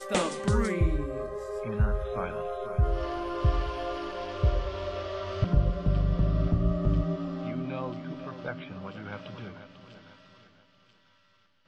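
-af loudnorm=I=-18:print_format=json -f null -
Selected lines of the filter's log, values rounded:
"input_i" : "-30.7",
"input_tp" : "-13.0",
"input_lra" : "17.0",
"input_thresh" : "-42.3",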